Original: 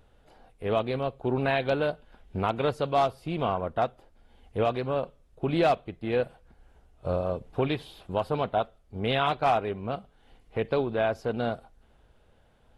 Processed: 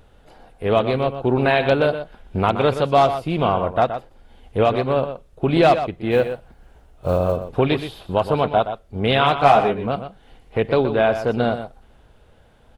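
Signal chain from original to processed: 6.11–7.37 s: block-companded coder 7-bit; 9.36–9.87 s: doubling 14 ms -3.5 dB; echo from a far wall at 21 m, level -10 dB; trim +8.5 dB

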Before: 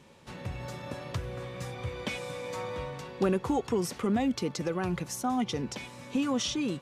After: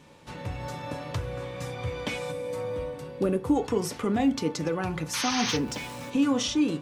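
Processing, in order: 5.42–6.10 s: jump at every zero crossing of -43 dBFS; 5.13–5.57 s: painted sound noise 830–6500 Hz -33 dBFS; reverberation RT60 0.30 s, pre-delay 3 ms, DRR 7 dB; 2.32–3.56 s: time-frequency box 610–7900 Hz -7 dB; trim +2 dB

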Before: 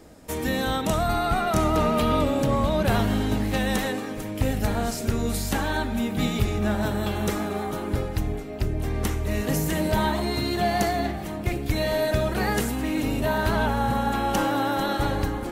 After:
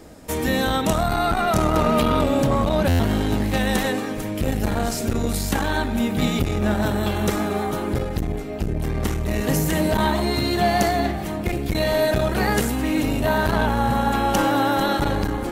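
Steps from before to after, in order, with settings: buffer glitch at 2.88 s, samples 512, times 9; transformer saturation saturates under 220 Hz; trim +5 dB

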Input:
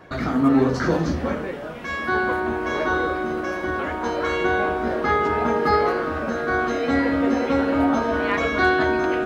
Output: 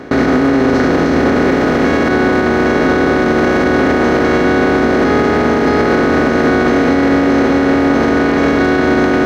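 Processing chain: spectral levelling over time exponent 0.2; gate with hold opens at -6 dBFS; graphic EQ 250/500/1000 Hz +4/+3/-4 dB; peak limiter -9 dBFS, peak gain reduction 10.5 dB; trim +5 dB

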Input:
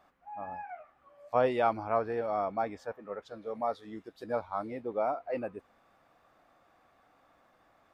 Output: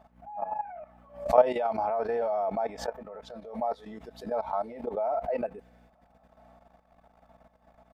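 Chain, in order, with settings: hum 60 Hz, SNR 22 dB; high-pass 92 Hz 6 dB/octave; high-order bell 680 Hz +9.5 dB 1 oct; comb 4.6 ms, depth 57%; dynamic bell 200 Hz, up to -4 dB, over -42 dBFS, Q 1.7; transient shaper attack 0 dB, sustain +5 dB; level held to a coarse grid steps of 14 dB; spectral replace 5.48–6.25 s, 550–1400 Hz after; swell ahead of each attack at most 140 dB/s

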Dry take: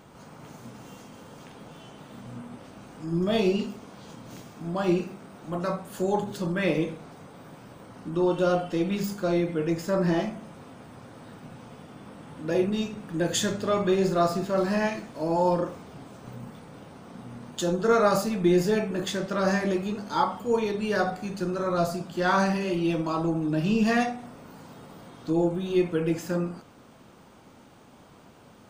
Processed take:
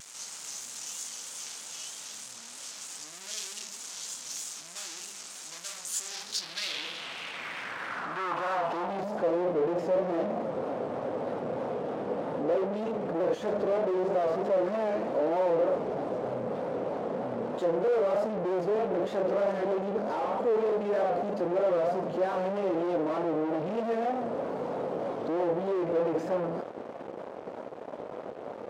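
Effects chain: fuzz box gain 49 dB, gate -52 dBFS; band-pass sweep 6.9 kHz -> 530 Hz, 5.95–9.38 s; vibrato 3.2 Hz 89 cents; trim -7.5 dB

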